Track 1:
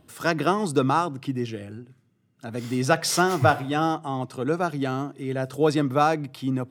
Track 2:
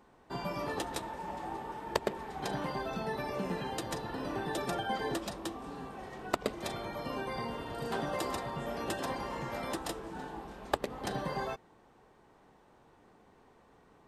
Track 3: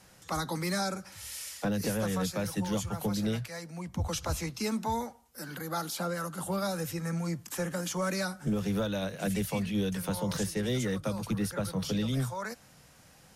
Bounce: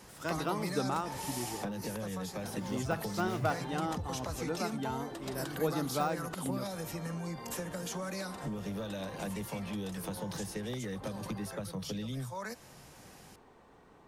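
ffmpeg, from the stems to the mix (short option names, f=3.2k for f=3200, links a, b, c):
-filter_complex "[0:a]deesser=0.7,volume=-12dB[a];[1:a]acompressor=threshold=-39dB:ratio=6,volume=2.5dB[b];[2:a]bandreject=f=1.4k:w=12,volume=2dB[c];[b][c]amix=inputs=2:normalize=0,acompressor=threshold=-36dB:ratio=6,volume=0dB[d];[a][d]amix=inputs=2:normalize=0"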